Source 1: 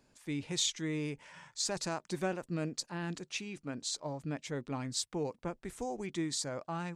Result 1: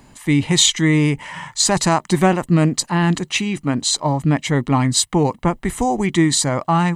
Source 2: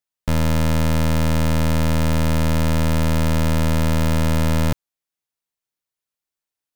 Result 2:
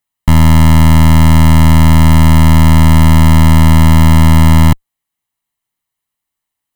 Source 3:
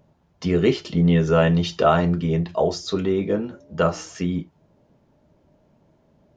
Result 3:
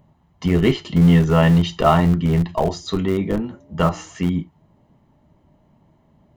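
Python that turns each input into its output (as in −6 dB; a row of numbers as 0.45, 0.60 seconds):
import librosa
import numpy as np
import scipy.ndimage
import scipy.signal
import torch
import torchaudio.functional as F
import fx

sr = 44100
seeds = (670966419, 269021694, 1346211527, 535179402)

p1 = fx.peak_eq(x, sr, hz=5300.0, db=-7.5, octaves=0.62)
p2 = p1 + 0.47 * np.pad(p1, (int(1.0 * sr / 1000.0), 0))[:len(p1)]
p3 = fx.schmitt(p2, sr, flips_db=-16.0)
p4 = p2 + (p3 * librosa.db_to_amplitude(-9.0))
y = p4 * 10.0 ** (-1.5 / 20.0) / np.max(np.abs(p4))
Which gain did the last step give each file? +20.5, +8.5, +2.0 decibels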